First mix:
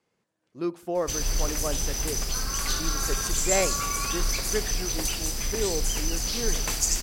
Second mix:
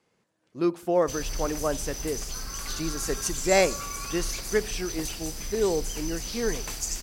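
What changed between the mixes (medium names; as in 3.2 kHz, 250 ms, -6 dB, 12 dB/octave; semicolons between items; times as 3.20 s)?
speech +4.5 dB; background -6.5 dB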